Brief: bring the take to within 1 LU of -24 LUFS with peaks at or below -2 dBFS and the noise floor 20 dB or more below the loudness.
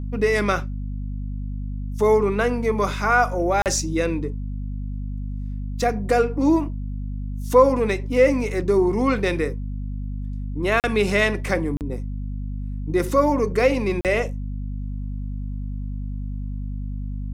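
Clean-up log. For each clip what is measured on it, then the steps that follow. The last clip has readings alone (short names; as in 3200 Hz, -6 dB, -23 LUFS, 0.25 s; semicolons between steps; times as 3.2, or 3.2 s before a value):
dropouts 4; longest dropout 38 ms; hum 50 Hz; harmonics up to 250 Hz; hum level -26 dBFS; loudness -23.0 LUFS; peak -3.5 dBFS; loudness target -24.0 LUFS
-> interpolate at 3.62/10.8/11.77/14.01, 38 ms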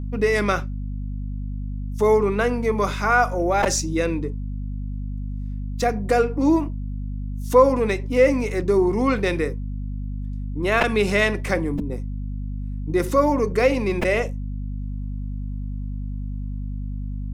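dropouts 0; hum 50 Hz; harmonics up to 250 Hz; hum level -26 dBFS
-> notches 50/100/150/200/250 Hz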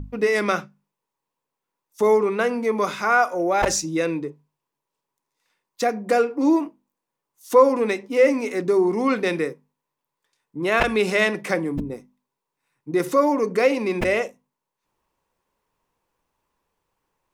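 hum none; loudness -21.5 LUFS; peak -4.0 dBFS; loudness target -24.0 LUFS
-> gain -2.5 dB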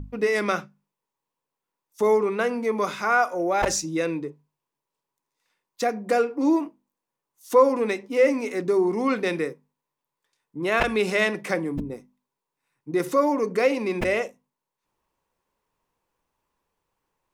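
loudness -24.0 LUFS; peak -6.5 dBFS; noise floor -86 dBFS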